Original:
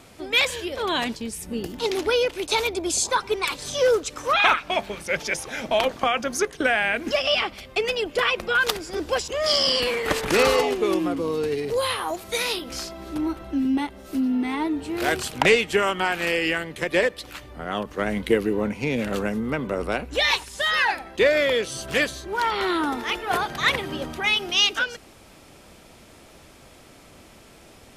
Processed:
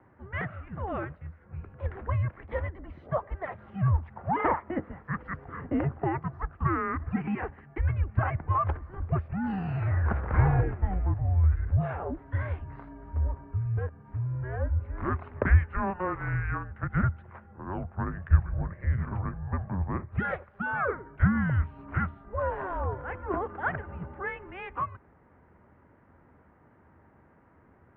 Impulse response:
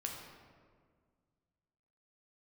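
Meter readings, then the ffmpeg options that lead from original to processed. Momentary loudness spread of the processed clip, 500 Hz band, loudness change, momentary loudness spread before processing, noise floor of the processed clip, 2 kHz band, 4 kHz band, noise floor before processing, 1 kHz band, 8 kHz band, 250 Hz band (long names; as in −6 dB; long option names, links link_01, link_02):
12 LU, −13.5 dB, −7.5 dB, 9 LU, −59 dBFS, −12.5 dB, below −35 dB, −49 dBFS, −6.5 dB, below −40 dB, −7.0 dB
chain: -filter_complex "[0:a]highpass=frequency=300:width_type=q:width=0.5412,highpass=frequency=300:width_type=q:width=1.307,lowpass=frequency=2000:width_type=q:width=0.5176,lowpass=frequency=2000:width_type=q:width=0.7071,lowpass=frequency=2000:width_type=q:width=1.932,afreqshift=-380,equalizer=frequency=81:width=6.8:gain=8,acrossover=split=110[link_01][link_02];[link_01]dynaudnorm=framelen=390:gausssize=31:maxgain=11.5dB[link_03];[link_03][link_02]amix=inputs=2:normalize=0,highpass=63,volume=-6dB"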